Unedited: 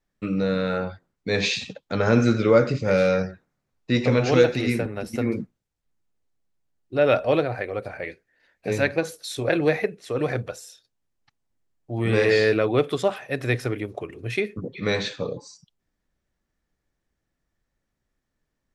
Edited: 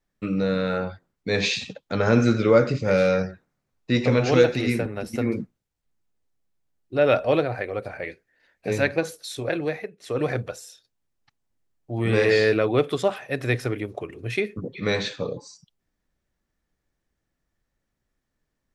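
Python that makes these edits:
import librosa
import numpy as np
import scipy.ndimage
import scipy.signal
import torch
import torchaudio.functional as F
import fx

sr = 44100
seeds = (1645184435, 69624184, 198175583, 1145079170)

y = fx.edit(x, sr, fx.fade_out_to(start_s=9.08, length_s=0.92, floor_db=-13.5), tone=tone)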